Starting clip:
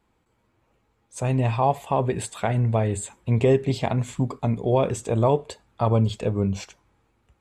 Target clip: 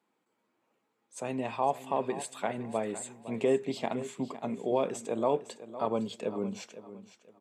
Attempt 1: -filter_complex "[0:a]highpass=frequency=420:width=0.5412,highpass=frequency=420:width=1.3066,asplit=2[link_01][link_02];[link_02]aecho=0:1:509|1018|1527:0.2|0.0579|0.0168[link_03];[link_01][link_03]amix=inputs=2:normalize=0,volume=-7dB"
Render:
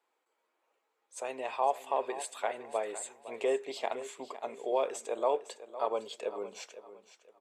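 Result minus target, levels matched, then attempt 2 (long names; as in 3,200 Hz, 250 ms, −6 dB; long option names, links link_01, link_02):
250 Hz band −10.5 dB
-filter_complex "[0:a]highpass=frequency=200:width=0.5412,highpass=frequency=200:width=1.3066,asplit=2[link_01][link_02];[link_02]aecho=0:1:509|1018|1527:0.2|0.0579|0.0168[link_03];[link_01][link_03]amix=inputs=2:normalize=0,volume=-7dB"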